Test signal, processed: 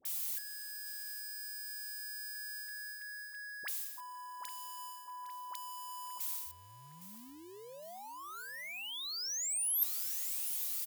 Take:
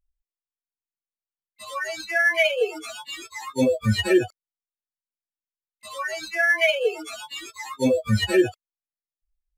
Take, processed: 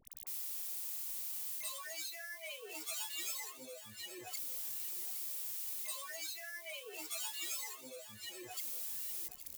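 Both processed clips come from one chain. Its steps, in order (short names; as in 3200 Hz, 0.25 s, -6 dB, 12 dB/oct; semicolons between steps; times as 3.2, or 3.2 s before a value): zero-crossing step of -29.5 dBFS; bell 1500 Hz -6 dB 0.44 oct; reverse; compressor 12:1, threshold -32 dBFS; reverse; added harmonics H 3 -13 dB, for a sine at -18 dBFS; RIAA curve recording; dispersion highs, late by 53 ms, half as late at 990 Hz; on a send: feedback echo 0.811 s, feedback 52%, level -14.5 dB; on the sum: gain -6 dB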